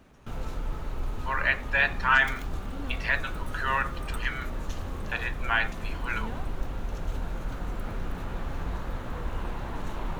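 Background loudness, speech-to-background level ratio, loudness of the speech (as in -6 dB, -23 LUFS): -37.0 LUFS, 9.0 dB, -28.0 LUFS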